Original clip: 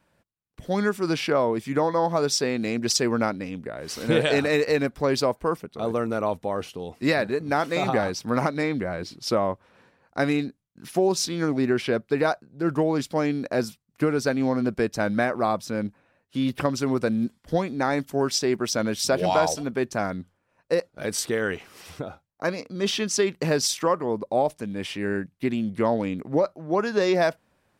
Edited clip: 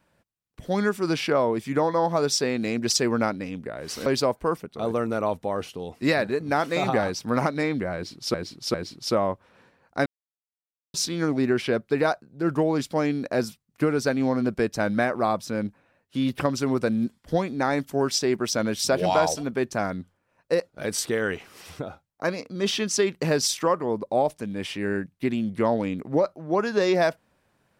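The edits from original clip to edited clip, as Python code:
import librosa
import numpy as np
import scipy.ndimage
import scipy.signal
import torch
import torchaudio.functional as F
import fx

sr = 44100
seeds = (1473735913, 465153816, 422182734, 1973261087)

y = fx.edit(x, sr, fx.cut(start_s=4.06, length_s=1.0),
    fx.repeat(start_s=8.94, length_s=0.4, count=3),
    fx.silence(start_s=10.26, length_s=0.88), tone=tone)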